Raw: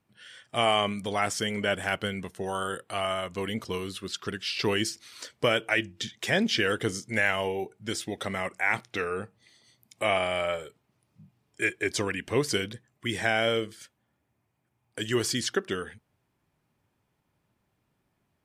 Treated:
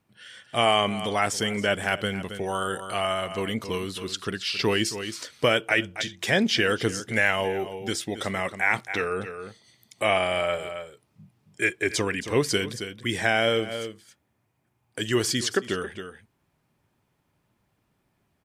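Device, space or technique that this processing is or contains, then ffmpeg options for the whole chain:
ducked delay: -filter_complex "[0:a]asplit=3[link_01][link_02][link_03];[link_02]adelay=272,volume=-9dB[link_04];[link_03]apad=whole_len=825419[link_05];[link_04][link_05]sidechaincompress=threshold=-37dB:ratio=8:attack=31:release=135[link_06];[link_01][link_06]amix=inputs=2:normalize=0,volume=3dB"

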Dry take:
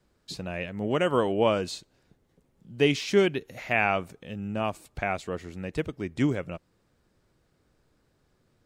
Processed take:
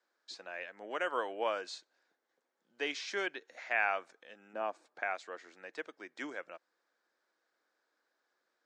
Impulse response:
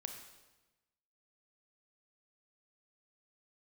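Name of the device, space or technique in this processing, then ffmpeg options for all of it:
phone speaker on a table: -filter_complex "[0:a]asettb=1/sr,asplit=3[link_01][link_02][link_03];[link_01]atrim=end=4.534[link_04];[link_02]atrim=start=4.53:end=5.03,asetpts=PTS-STARTPTS,afade=type=in:duration=0.004:curve=qsin,afade=type=out:start_time=0.496:duration=0.004:curve=qsin,tiltshelf=frequency=1100:gain=6.5[link_05];[link_03]atrim=start=5.026[link_06];[link_04][link_05]acrossfade=duration=0.004:curve1=hsin:curve2=qsin[link_07];[link_07][link_06]acrossfade=duration=0.004:curve1=qsin:curve2=hsin,highpass=frequency=400:width=0.5412,highpass=frequency=400:width=1.3066,equalizer=frequency=410:width_type=q:width=4:gain=-8,equalizer=frequency=580:width_type=q:width=4:gain=-3,equalizer=frequency=1600:width_type=q:width=4:gain=7,equalizer=frequency=2800:width_type=q:width=4:gain=-5,lowpass=frequency=7000:width=0.5412,lowpass=frequency=7000:width=1.3066,volume=-7dB"

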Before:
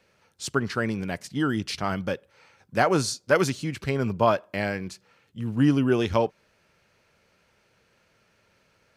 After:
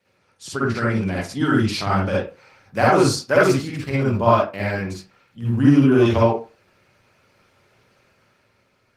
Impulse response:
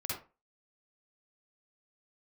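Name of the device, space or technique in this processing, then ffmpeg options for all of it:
far-field microphone of a smart speaker: -filter_complex "[1:a]atrim=start_sample=2205[link_01];[0:a][link_01]afir=irnorm=-1:irlink=0,highpass=98,dynaudnorm=framelen=200:gausssize=9:maxgain=6dB" -ar 48000 -c:a libopus -b:a 20k

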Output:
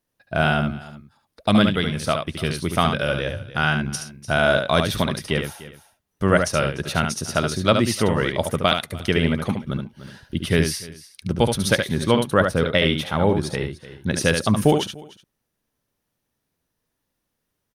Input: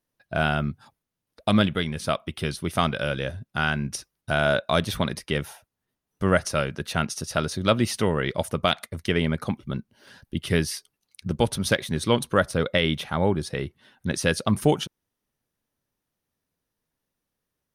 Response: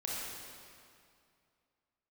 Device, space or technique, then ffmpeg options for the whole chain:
ducked delay: -filter_complex "[0:a]asettb=1/sr,asplit=3[link_01][link_02][link_03];[link_01]atrim=end=11.814[link_04];[link_02]atrim=start=11.81:end=12.58,asetpts=PTS-STARTPTS,afade=type=in:duration=0.004:curve=qsin,afade=type=out:start_time=0.766:duration=0.004:curve=qsin,equalizer=frequency=7400:width_type=o:width=2:gain=-5[link_05];[link_03]atrim=start=12.576[link_06];[link_04][link_05]acrossfade=duration=0.004:curve1=hsin:curve2=qsin[link_07];[link_07][link_06]acrossfade=duration=0.004:curve1=qsin:curve2=hsin,asplit=3[link_08][link_09][link_10];[link_09]adelay=297,volume=-7dB[link_11];[link_10]apad=whole_len=795465[link_12];[link_11][link_12]sidechaincompress=threshold=-35dB:ratio=16:attack=25:release=728[link_13];[link_08][link_13]amix=inputs=2:normalize=0,aecho=1:1:72:0.501,volume=3dB"

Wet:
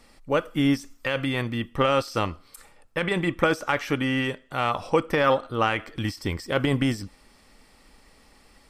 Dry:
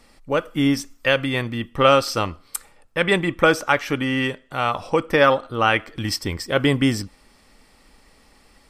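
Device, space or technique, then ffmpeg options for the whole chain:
de-esser from a sidechain: -filter_complex "[0:a]asplit=2[link_01][link_02];[link_02]highpass=5800,apad=whole_len=383295[link_03];[link_01][link_03]sidechaincompress=threshold=-40dB:ratio=10:attack=3.6:release=21,volume=-1.5dB"

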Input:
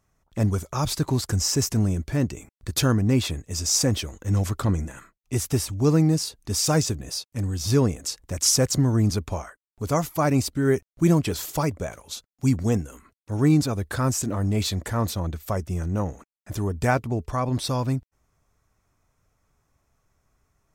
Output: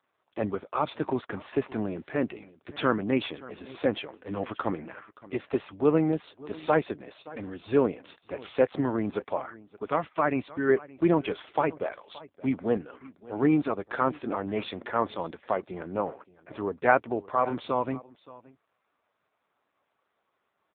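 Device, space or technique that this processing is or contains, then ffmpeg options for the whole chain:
satellite phone: -filter_complex "[0:a]asettb=1/sr,asplit=3[link_01][link_02][link_03];[link_01]atrim=end=7.334[link_04];[link_02]atrim=start=7.33:end=8,asetpts=PTS-STARTPTS,afade=type=in:duration=0.004:curve=qsin,afade=type=out:start_time=0.666:duration=0.004:curve=qsin,acrossover=split=7900[link_05][link_06];[link_06]acompressor=threshold=-53dB:ratio=4:attack=1:release=60[link_07];[link_05][link_07]amix=inputs=2:normalize=0[link_08];[link_03]atrim=start=7.996[link_09];[link_04][link_08]acrossfade=duration=0.004:curve1=hsin:curve2=qsin[link_10];[link_10][link_09]acrossfade=duration=0.004:curve1=qsin:curve2=hsin,asplit=3[link_11][link_12][link_13];[link_11]afade=type=out:start_time=9.83:duration=0.02[link_14];[link_12]equalizer=frequency=570:width_type=o:width=2.1:gain=-5,afade=type=in:start_time=9.83:duration=0.02,afade=type=out:start_time=10.68:duration=0.02[link_15];[link_13]afade=type=in:start_time=10.68:duration=0.02[link_16];[link_14][link_15][link_16]amix=inputs=3:normalize=0,highpass=380,lowpass=3200,aecho=1:1:572:0.1,volume=3.5dB" -ar 8000 -c:a libopencore_amrnb -b:a 5900

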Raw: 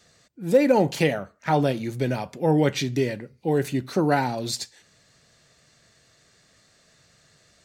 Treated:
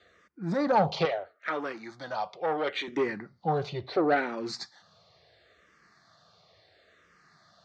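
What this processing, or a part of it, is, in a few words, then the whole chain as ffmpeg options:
barber-pole phaser into a guitar amplifier: -filter_complex "[0:a]asplit=2[link_01][link_02];[link_02]afreqshift=-0.73[link_03];[link_01][link_03]amix=inputs=2:normalize=1,asoftclip=type=tanh:threshold=-20.5dB,highpass=84,equalizer=frequency=130:width_type=q:width=4:gain=-9,equalizer=frequency=250:width_type=q:width=4:gain=-9,equalizer=frequency=740:width_type=q:width=4:gain=5,equalizer=frequency=1200:width_type=q:width=4:gain=6,equalizer=frequency=2700:width_type=q:width=4:gain=-6,lowpass=frequency=4500:width=0.5412,lowpass=frequency=4500:width=1.3066,asettb=1/sr,asplit=3[link_04][link_05][link_06];[link_04]atrim=end=1.054[link_07];[link_05]atrim=start=1.05:end=2.88,asetpts=PTS-STARTPTS,afade=type=in:duration=0.004:curve=qsin,afade=type=out:start_time=1.826:duration=0.004:curve=qsin,highpass=frequency=850:poles=1[link_08];[link_06]atrim=start=2.876[link_09];[link_07][link_08]acrossfade=duration=0.004:curve1=hsin:curve2=qsin[link_10];[link_10][link_09]acrossfade=duration=0.004:curve1=qsin:curve2=hsin,volume=2.5dB"

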